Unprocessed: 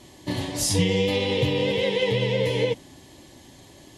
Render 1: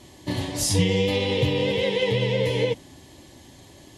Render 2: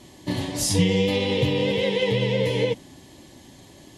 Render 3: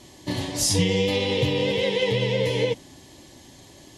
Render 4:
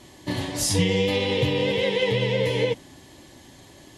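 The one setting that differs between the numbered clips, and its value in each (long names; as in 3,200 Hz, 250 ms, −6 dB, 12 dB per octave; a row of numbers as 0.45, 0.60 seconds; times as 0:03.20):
parametric band, centre frequency: 79, 200, 5,700, 1,500 Hertz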